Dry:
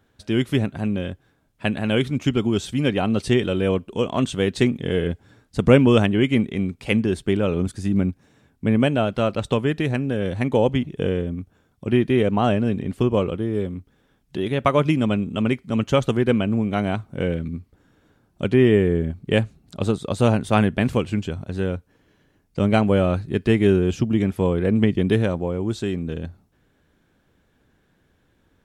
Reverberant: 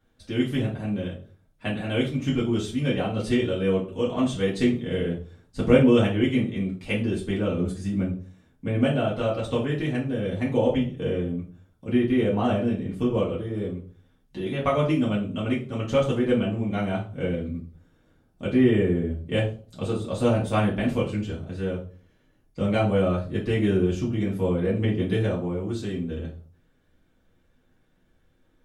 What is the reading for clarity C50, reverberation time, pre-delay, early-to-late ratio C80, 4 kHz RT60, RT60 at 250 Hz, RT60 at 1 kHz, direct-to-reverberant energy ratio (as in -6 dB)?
9.0 dB, 0.40 s, 3 ms, 14.0 dB, 0.35 s, 0.45 s, 0.40 s, -6.5 dB